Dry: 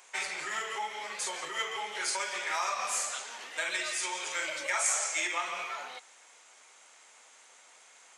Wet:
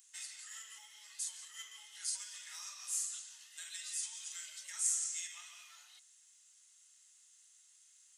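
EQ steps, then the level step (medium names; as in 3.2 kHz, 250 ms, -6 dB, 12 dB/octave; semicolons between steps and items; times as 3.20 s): Butterworth band-stop 2.3 kHz, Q 7.9; differentiator; amplifier tone stack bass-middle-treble 5-5-5; +2.0 dB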